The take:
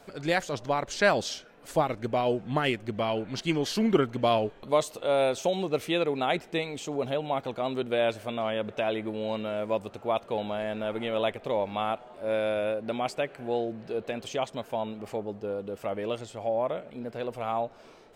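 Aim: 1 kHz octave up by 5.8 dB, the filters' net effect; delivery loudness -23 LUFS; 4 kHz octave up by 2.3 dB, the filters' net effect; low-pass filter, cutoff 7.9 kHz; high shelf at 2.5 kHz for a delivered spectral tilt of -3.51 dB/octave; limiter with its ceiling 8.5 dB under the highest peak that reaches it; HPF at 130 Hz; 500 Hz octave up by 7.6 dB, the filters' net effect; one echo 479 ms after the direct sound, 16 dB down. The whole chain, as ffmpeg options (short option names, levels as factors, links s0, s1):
-af "highpass=130,lowpass=7900,equalizer=f=500:t=o:g=8,equalizer=f=1000:t=o:g=5,highshelf=f=2500:g=-7.5,equalizer=f=4000:t=o:g=9,alimiter=limit=0.211:level=0:latency=1,aecho=1:1:479:0.158,volume=1.26"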